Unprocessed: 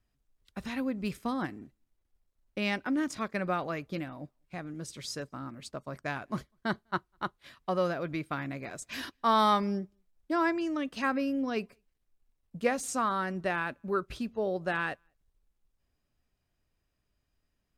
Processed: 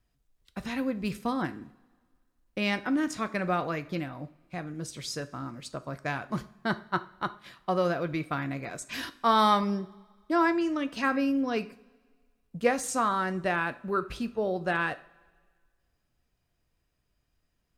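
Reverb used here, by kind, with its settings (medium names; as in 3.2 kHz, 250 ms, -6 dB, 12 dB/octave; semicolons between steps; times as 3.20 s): two-slope reverb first 0.41 s, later 1.7 s, from -18 dB, DRR 10.5 dB; trim +2.5 dB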